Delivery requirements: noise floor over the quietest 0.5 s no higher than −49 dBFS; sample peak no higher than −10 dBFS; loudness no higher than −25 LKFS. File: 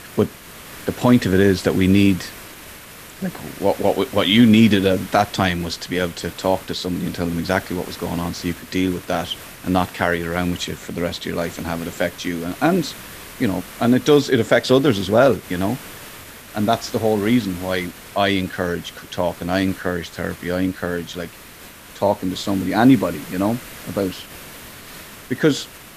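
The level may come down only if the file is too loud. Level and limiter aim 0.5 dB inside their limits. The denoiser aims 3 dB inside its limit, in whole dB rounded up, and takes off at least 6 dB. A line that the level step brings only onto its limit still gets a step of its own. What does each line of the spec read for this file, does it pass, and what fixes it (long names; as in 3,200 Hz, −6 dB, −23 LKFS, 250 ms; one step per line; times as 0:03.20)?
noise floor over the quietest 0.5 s −41 dBFS: out of spec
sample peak −2.0 dBFS: out of spec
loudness −20.0 LKFS: out of spec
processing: broadband denoise 6 dB, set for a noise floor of −41 dBFS
level −5.5 dB
brickwall limiter −10.5 dBFS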